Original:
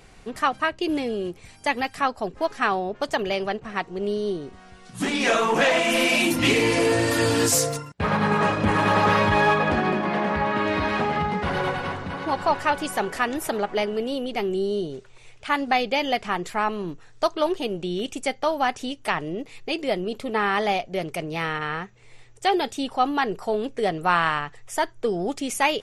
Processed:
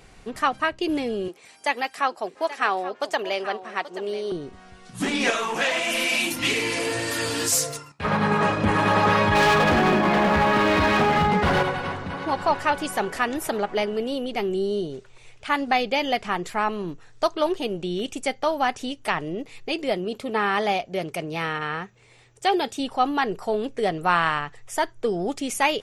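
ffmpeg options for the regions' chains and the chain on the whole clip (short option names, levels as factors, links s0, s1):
-filter_complex "[0:a]asettb=1/sr,asplit=3[s0][s1][s2];[s0]atrim=end=1.284[s3];[s1]atrim=start=1.28:end=4.32,asetpts=PTS-STARTPTS,afade=t=in:d=0.004:c=qsin,afade=t=out:st=3.036:d=0.004:c=qsin,highpass=380,aecho=1:1:830:0.2,atrim=end_sample=134064[s4];[s2]atrim=start=4.316[s5];[s3][s4]acrossfade=d=0.004:c1=hsin:c2=qsin[s6];[s6][s5]acrossfade=d=0.004:c1=qsin:c2=hsin,asettb=1/sr,asplit=3[s7][s8][s9];[s7]atrim=end=5.304[s10];[s8]atrim=start=5.3:end=8.05,asetpts=PTS-STARTPTS,afade=t=in:d=0.004:c=qsin,afade=t=out:st=2.746:d=0.004:c=qsin,tiltshelf=f=1100:g=-4.5,flanger=delay=5.6:depth=8.9:regen=76:speed=1.7:shape=triangular[s11];[s9]atrim=start=8.046[s12];[s10][s11]acrossfade=d=0.004:c1=hsin:c2=qsin[s13];[s13][s12]acrossfade=d=0.004:c1=qsin:c2=hsin,asettb=1/sr,asplit=3[s14][s15][s16];[s14]atrim=end=9.354[s17];[s15]atrim=start=9.35:end=11.63,asetpts=PTS-STARTPTS,afade=t=in:d=0.004:c=qsin,afade=t=out:st=2.276:d=0.004:c=qsin,acontrast=54,volume=5.96,asoftclip=hard,volume=0.168[s18];[s16]atrim=start=11.626[s19];[s17][s18]acrossfade=d=0.004:c1=hsin:c2=qsin[s20];[s20][s19]acrossfade=d=0.004:c1=qsin:c2=hsin,asettb=1/sr,asplit=3[s21][s22][s23];[s21]atrim=end=19.924[s24];[s22]atrim=start=19.92:end=22.8,asetpts=PTS-STARTPTS,afade=t=in:d=0.004:c=qsin,afade=t=out:st=2.876:d=0.004:c=qsin,highpass=f=76:p=1,bandreject=f=2000:w=27[s25];[s23]atrim=start=22.796[s26];[s24][s25]acrossfade=d=0.004:c1=hsin:c2=qsin[s27];[s27][s26]acrossfade=d=0.004:c1=qsin:c2=hsin"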